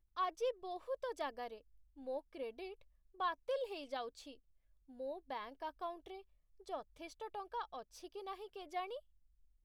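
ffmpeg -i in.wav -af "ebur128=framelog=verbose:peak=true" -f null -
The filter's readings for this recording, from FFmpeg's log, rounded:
Integrated loudness:
  I:         -44.6 LUFS
  Threshold: -55.1 LUFS
Loudness range:
  LRA:         4.3 LU
  Threshold: -65.8 LUFS
  LRA low:   -48.3 LUFS
  LRA high:  -44.0 LUFS
True peak:
  Peak:      -27.7 dBFS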